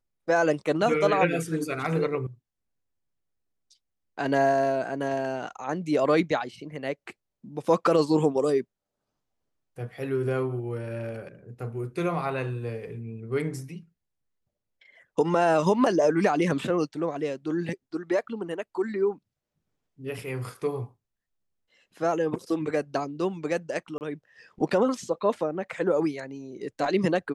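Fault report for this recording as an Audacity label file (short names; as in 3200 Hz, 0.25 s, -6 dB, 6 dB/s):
23.980000	24.010000	gap 29 ms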